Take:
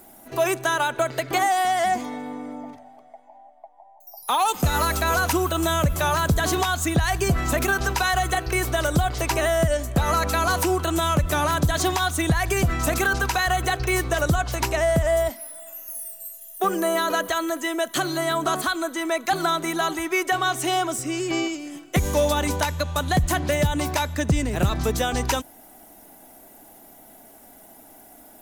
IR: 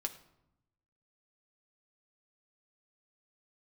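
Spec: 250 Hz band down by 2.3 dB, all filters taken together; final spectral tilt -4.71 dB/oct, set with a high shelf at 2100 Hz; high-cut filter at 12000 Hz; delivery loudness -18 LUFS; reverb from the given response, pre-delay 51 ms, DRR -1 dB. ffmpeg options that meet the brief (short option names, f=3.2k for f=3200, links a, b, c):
-filter_complex "[0:a]lowpass=12k,equalizer=f=250:t=o:g=-3.5,highshelf=f=2.1k:g=-5,asplit=2[a][b];[1:a]atrim=start_sample=2205,adelay=51[c];[b][c]afir=irnorm=-1:irlink=0,volume=1dB[d];[a][d]amix=inputs=2:normalize=0,volume=3dB"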